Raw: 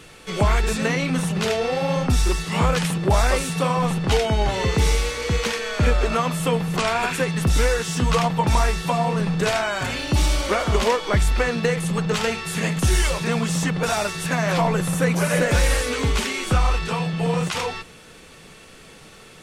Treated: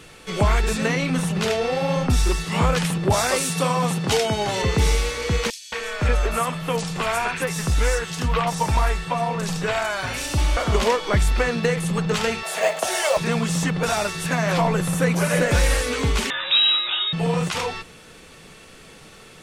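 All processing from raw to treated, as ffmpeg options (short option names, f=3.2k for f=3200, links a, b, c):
-filter_complex "[0:a]asettb=1/sr,asplit=3[a][b][c];[a]atrim=end=3.124[d];[b]atrim=start=3.12:end=4.62,asetpts=PTS-STARTPTS,afade=t=in:d=0.004:c=qsin,afade=t=out:st=1.496:d=0.004:c=qsin,highpass=f=96:w=0.5412,highpass=f=96:w=1.3066,bass=f=250:g=-1,treble=f=4k:g=6[e];[c]atrim=start=4.616[f];[d][e]acrossfade=d=0.004:c1=hsin:c2=qsin[g];[g][f]acrossfade=d=0.004:c1=qsin:c2=hsin,asettb=1/sr,asplit=3[h][i][j];[h]atrim=end=5.504[k];[i]atrim=start=5.5:end=10.57,asetpts=PTS-STARTPTS,afade=t=in:d=0.004:c=qsin,afade=t=out:st=5.066:d=0.004:c=qsin,equalizer=f=230:w=0.61:g=-5.5,acrossover=split=3900[l][m];[l]adelay=220[n];[n][m]amix=inputs=2:normalize=0,atrim=end_sample=223587[o];[j]atrim=start=10.566[p];[k][o]acrossfade=d=0.004:c1=hsin:c2=qsin[q];[q][p]acrossfade=d=0.004:c1=qsin:c2=hsin,asettb=1/sr,asplit=3[r][s][t];[r]atrim=end=12.434[u];[s]atrim=start=12.43:end=13.17,asetpts=PTS-STARTPTS,afade=t=in:d=0.004:c=qsin,afade=t=out:st=0.736:d=0.004:c=qsin,highpass=f=640:t=q:w=7.9,acrusher=bits=7:mode=log:mix=0:aa=0.000001[v];[t]atrim=start=13.166[w];[u][v]acrossfade=d=0.004:c1=hsin:c2=qsin[x];[x][w]acrossfade=d=0.004:c1=qsin:c2=hsin,asettb=1/sr,asplit=3[y][z][aa];[y]atrim=end=16.304[ab];[z]atrim=start=16.3:end=17.13,asetpts=PTS-STARTPTS,afade=t=in:d=0.004:c=qsin,afade=t=out:st=0.826:d=0.004:c=qsin,lowpass=f=3.3k:t=q:w=0.5098,lowpass=f=3.3k:t=q:w=0.6013,lowpass=f=3.3k:t=q:w=0.9,lowpass=f=3.3k:t=q:w=2.563,afreqshift=-3900,acompressor=mode=upward:threshold=-22dB:ratio=2.5:attack=3.2:release=140:knee=2.83:detection=peak[ac];[aa]atrim=start=17.126[ad];[ab][ac]acrossfade=d=0.004:c1=hsin:c2=qsin[ae];[ae][ad]acrossfade=d=0.004:c1=qsin:c2=hsin"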